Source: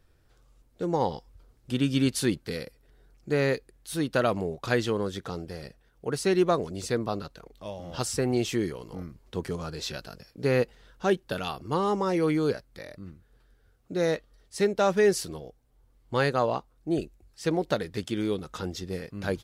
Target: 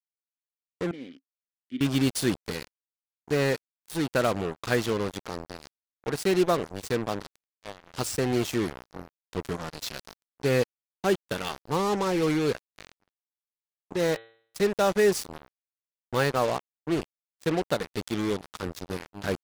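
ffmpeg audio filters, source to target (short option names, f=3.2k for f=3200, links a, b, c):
-filter_complex "[0:a]acrusher=bits=4:mix=0:aa=0.5,asettb=1/sr,asplit=3[a][b][c];[a]atrim=end=0.914[d];[b]atrim=start=0.91:end=1.81,asetpts=PTS-STARTPTS,afade=t=in:d=0.004:c=qsin,afade=t=out:st=0.896:d=0.004:c=qsin,asplit=3[e][f][g];[e]bandpass=f=270:t=q:w=8,volume=0dB[h];[f]bandpass=f=2.29k:t=q:w=8,volume=-6dB[i];[g]bandpass=f=3.01k:t=q:w=8,volume=-9dB[j];[h][i][j]amix=inputs=3:normalize=0[k];[c]atrim=start=1.806[l];[d][k]acrossfade=d=0.004:c1=hsin:c2=qsin[m];[m][l]acrossfade=d=0.004:c1=qsin:c2=hsin,asettb=1/sr,asplit=3[n][o][p];[n]atrim=end=14.074[q];[o]atrim=start=14.07:end=14.7,asetpts=PTS-STARTPTS,afade=t=in:d=0.004:c=qsin,afade=t=out:st=0.626:d=0.004:c=qsin,bandreject=f=113.4:t=h:w=4,bandreject=f=226.8:t=h:w=4,bandreject=f=340.2:t=h:w=4,bandreject=f=453.6:t=h:w=4,bandreject=f=567:t=h:w=4,bandreject=f=680.4:t=h:w=4,bandreject=f=793.8:t=h:w=4,bandreject=f=907.2:t=h:w=4,bandreject=f=1.0206k:t=h:w=4,bandreject=f=1.134k:t=h:w=4,bandreject=f=1.2474k:t=h:w=4,bandreject=f=1.3608k:t=h:w=4,bandreject=f=1.4742k:t=h:w=4,bandreject=f=1.5876k:t=h:w=4,bandreject=f=1.701k:t=h:w=4,bandreject=f=1.8144k:t=h:w=4,bandreject=f=1.9278k:t=h:w=4,bandreject=f=2.0412k:t=h:w=4,bandreject=f=2.1546k:t=h:w=4,bandreject=f=2.268k:t=h:w=4,bandreject=f=2.3814k:t=h:w=4,bandreject=f=2.4948k:t=h:w=4,bandreject=f=2.6082k:t=h:w=4,bandreject=f=2.7216k:t=h:w=4,bandreject=f=2.835k:t=h:w=4,bandreject=f=2.9484k:t=h:w=4,bandreject=f=3.0618k:t=h:w=4,bandreject=f=3.1752k:t=h:w=4,bandreject=f=3.2886k:t=h:w=4,bandreject=f=3.402k:t=h:w=4,bandreject=f=3.5154k:t=h:w=4,bandreject=f=3.6288k:t=h:w=4,bandreject=f=3.7422k:t=h:w=4,bandreject=f=3.8556k:t=h:w=4,bandreject=f=3.969k:t=h:w=4,bandreject=f=4.0824k:t=h:w=4[r];[p]atrim=start=14.696[s];[q][r]acrossfade=d=0.004:c1=hsin:c2=qsin[t];[t][s]acrossfade=d=0.004:c1=qsin:c2=hsin"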